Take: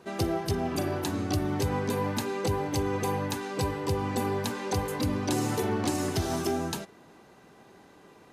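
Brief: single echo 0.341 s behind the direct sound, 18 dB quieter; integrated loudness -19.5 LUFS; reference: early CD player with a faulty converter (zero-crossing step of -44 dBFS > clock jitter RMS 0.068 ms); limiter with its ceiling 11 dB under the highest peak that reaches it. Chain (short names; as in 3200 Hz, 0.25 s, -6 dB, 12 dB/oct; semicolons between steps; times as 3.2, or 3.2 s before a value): limiter -29 dBFS; echo 0.341 s -18 dB; zero-crossing step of -44 dBFS; clock jitter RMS 0.068 ms; gain +16.5 dB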